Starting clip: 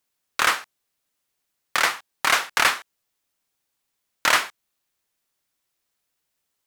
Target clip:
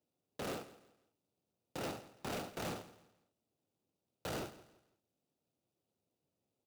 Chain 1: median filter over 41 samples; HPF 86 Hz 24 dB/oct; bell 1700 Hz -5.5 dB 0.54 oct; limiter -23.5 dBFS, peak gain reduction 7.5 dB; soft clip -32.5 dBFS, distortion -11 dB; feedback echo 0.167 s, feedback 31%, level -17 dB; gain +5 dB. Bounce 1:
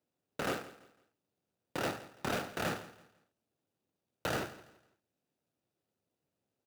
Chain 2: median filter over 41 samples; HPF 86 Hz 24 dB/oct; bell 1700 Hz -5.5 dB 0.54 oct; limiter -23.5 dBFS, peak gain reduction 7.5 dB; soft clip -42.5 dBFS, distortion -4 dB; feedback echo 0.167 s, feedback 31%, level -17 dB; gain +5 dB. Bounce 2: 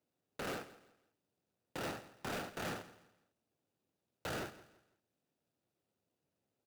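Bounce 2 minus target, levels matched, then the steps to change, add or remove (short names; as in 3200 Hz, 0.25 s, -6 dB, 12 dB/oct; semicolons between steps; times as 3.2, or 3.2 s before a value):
2000 Hz band +4.0 dB
change: bell 1700 Hz -17.5 dB 0.54 oct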